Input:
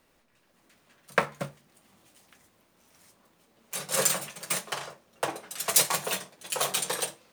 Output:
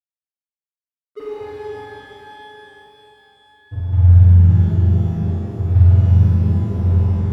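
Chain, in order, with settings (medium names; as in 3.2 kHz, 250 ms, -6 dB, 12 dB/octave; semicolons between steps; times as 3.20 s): spectrum inverted on a logarithmic axis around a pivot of 830 Hz; 6.10–6.68 s: bass shelf 200 Hz -7 dB; in parallel at +1 dB: peak limiter -16.5 dBFS, peak gain reduction 10.5 dB; on the sum: loudest bins only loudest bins 2; crossover distortion -35 dBFS; on a send: flutter echo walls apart 7.7 m, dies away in 1.2 s; on the sum: pitch-shifted reverb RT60 4 s, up +12 st, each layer -8 dB, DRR -7.5 dB; trim -3 dB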